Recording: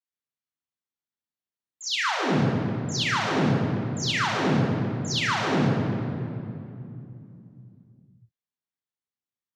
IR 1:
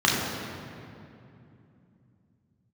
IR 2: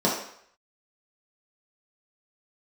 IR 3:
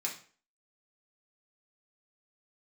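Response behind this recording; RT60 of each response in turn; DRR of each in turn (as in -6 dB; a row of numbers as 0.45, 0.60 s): 1; 2.7, 0.65, 0.45 s; -4.5, -6.0, -2.5 dB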